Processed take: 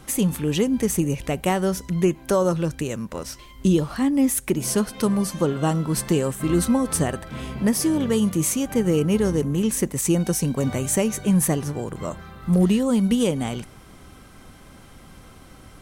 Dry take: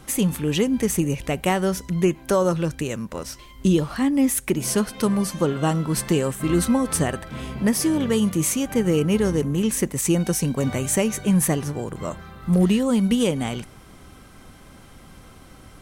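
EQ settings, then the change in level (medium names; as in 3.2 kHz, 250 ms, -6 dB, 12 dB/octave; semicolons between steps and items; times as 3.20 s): dynamic bell 2.2 kHz, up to -3 dB, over -37 dBFS, Q 0.84; 0.0 dB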